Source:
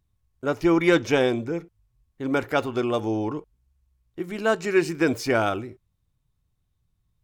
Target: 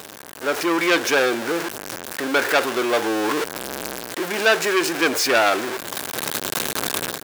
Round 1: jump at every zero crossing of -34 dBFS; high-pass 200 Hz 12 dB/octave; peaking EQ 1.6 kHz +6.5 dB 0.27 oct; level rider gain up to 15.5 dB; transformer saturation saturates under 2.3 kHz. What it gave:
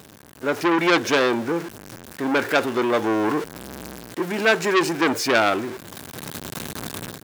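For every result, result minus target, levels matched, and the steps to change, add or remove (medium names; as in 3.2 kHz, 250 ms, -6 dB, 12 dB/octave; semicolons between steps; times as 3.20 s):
jump at every zero crossing: distortion -8 dB; 250 Hz band +2.5 dB
change: jump at every zero crossing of -24 dBFS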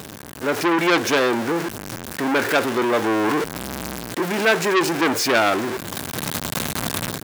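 250 Hz band +3.0 dB
change: high-pass 430 Hz 12 dB/octave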